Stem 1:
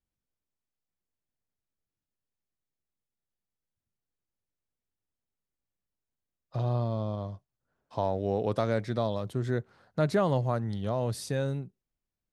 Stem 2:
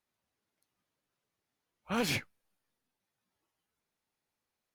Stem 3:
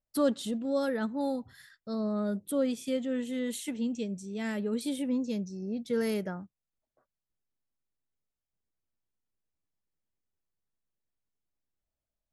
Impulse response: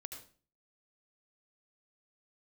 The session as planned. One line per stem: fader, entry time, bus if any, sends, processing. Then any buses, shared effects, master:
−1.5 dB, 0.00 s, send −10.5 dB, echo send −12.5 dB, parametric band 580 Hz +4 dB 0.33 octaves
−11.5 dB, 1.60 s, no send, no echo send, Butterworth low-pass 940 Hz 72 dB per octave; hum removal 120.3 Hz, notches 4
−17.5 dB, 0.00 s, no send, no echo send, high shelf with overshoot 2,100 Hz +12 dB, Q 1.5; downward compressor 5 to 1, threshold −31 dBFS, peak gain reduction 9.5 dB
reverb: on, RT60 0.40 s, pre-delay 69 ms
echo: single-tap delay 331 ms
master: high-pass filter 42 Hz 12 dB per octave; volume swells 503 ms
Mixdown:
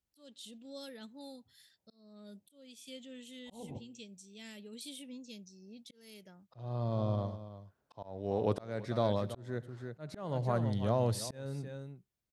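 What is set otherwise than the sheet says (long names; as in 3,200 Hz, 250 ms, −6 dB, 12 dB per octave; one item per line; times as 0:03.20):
stem 1: missing parametric band 580 Hz +4 dB 0.33 octaves
stem 2 −11.5 dB → −0.5 dB
stem 3: missing downward compressor 5 to 1, threshold −31 dBFS, peak gain reduction 9.5 dB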